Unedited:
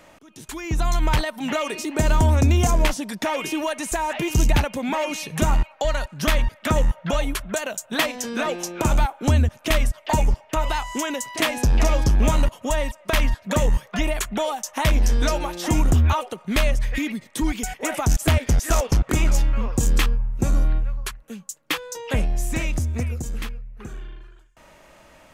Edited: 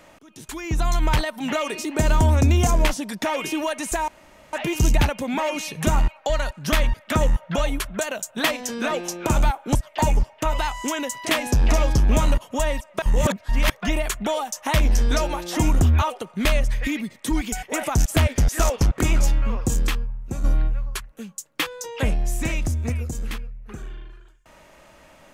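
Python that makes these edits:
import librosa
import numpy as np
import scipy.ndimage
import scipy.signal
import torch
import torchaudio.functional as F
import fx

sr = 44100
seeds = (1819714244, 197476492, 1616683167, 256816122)

y = fx.edit(x, sr, fx.insert_room_tone(at_s=4.08, length_s=0.45),
    fx.cut(start_s=9.3, length_s=0.56),
    fx.reverse_span(start_s=13.13, length_s=0.68),
    fx.fade_out_to(start_s=19.68, length_s=0.87, curve='qua', floor_db=-8.0), tone=tone)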